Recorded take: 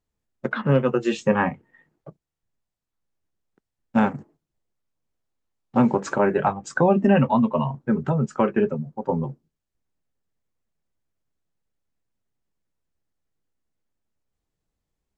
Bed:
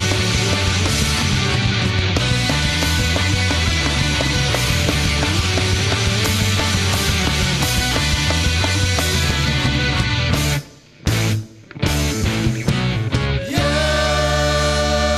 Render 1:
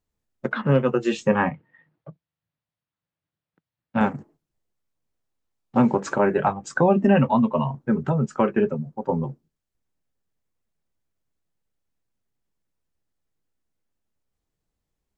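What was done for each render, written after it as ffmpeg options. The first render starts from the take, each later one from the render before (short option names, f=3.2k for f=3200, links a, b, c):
-filter_complex "[0:a]asettb=1/sr,asplit=3[a][b][c];[a]atrim=end=1.504[d];[b]atrim=start=1.5:end=4.01,asetpts=PTS-STARTPTS,afade=t=in:d=0.004:c=qsin,afade=t=out:st=2.506:d=0.004:c=qsin,highpass=110,equalizer=f=110:t=q:w=4:g=5,equalizer=f=160:t=q:w=4:g=5,equalizer=f=230:t=q:w=4:g=-6,equalizer=f=390:t=q:w=4:g=-9,equalizer=f=780:t=q:w=4:g=-3,lowpass=f=4.2k:w=0.5412,lowpass=f=4.2k:w=1.3066[e];[c]atrim=start=4.006[f];[d][e]acrossfade=d=0.004:c1=hsin:c2=qsin[g];[g][f]acrossfade=d=0.004:c1=qsin:c2=hsin"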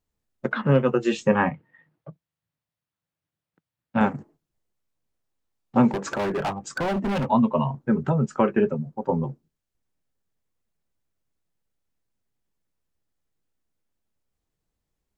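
-filter_complex "[0:a]asettb=1/sr,asplit=3[a][b][c];[a]atrim=end=5.884[d];[b]atrim=start=5.88:end=7.3,asetpts=PTS-STARTPTS,afade=t=in:d=0.004:c=qsin,afade=t=out:st=1.416:d=0.004:c=qsin,volume=23dB,asoftclip=hard,volume=-23dB[e];[c]atrim=start=7.296[f];[d][e]acrossfade=d=0.004:c1=hsin:c2=qsin[g];[g][f]acrossfade=d=0.004:c1=qsin:c2=hsin"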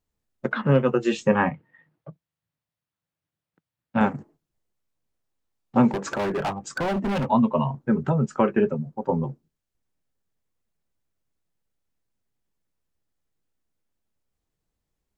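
-af anull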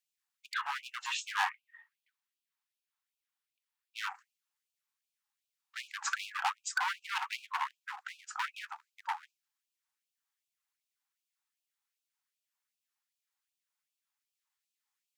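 -af "asoftclip=type=hard:threshold=-22.5dB,afftfilt=real='re*gte(b*sr/1024,720*pow(2400/720,0.5+0.5*sin(2*PI*2.6*pts/sr)))':imag='im*gte(b*sr/1024,720*pow(2400/720,0.5+0.5*sin(2*PI*2.6*pts/sr)))':win_size=1024:overlap=0.75"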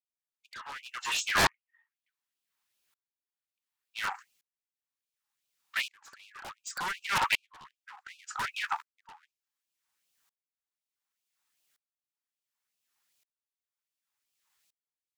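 -af "aeval=exprs='0.126*sin(PI/2*3.98*val(0)/0.126)':c=same,aeval=exprs='val(0)*pow(10,-35*if(lt(mod(-0.68*n/s,1),2*abs(-0.68)/1000),1-mod(-0.68*n/s,1)/(2*abs(-0.68)/1000),(mod(-0.68*n/s,1)-2*abs(-0.68)/1000)/(1-2*abs(-0.68)/1000))/20)':c=same"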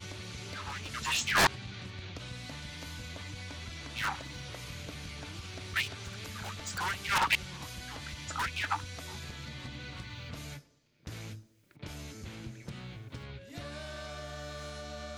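-filter_complex "[1:a]volume=-25.5dB[a];[0:a][a]amix=inputs=2:normalize=0"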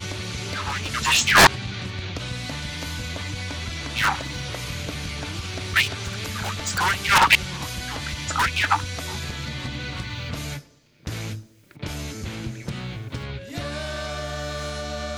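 -af "volume=12dB"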